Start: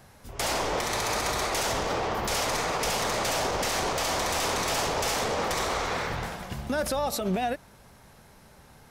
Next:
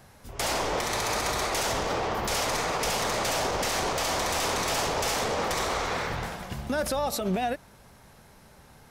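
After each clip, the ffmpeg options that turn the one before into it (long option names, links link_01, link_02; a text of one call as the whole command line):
ffmpeg -i in.wav -af anull out.wav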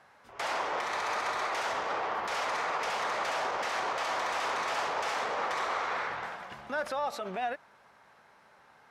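ffmpeg -i in.wav -af "bandpass=frequency=1300:width_type=q:width=0.93:csg=0" out.wav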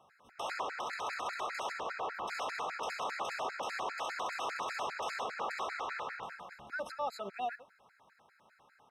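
ffmpeg -i in.wav -filter_complex "[0:a]asplit=2[link_01][link_02];[link_02]adelay=90,highpass=300,lowpass=3400,asoftclip=type=hard:threshold=-28.5dB,volume=-14dB[link_03];[link_01][link_03]amix=inputs=2:normalize=0,afftfilt=real='re*gt(sin(2*PI*5*pts/sr)*(1-2*mod(floor(b*sr/1024/1300),2)),0)':imag='im*gt(sin(2*PI*5*pts/sr)*(1-2*mod(floor(b*sr/1024/1300),2)),0)':win_size=1024:overlap=0.75,volume=-3dB" out.wav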